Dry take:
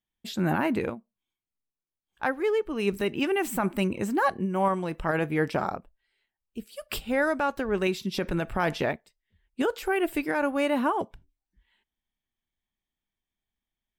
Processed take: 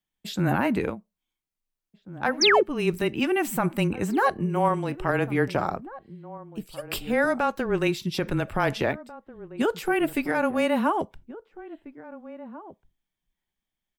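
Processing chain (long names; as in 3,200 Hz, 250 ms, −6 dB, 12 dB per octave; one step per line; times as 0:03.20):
sound drawn into the spectrogram fall, 0:02.41–0:02.63, 340–6,600 Hz −21 dBFS
frequency shifter −18 Hz
slap from a distant wall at 290 metres, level −16 dB
level +2 dB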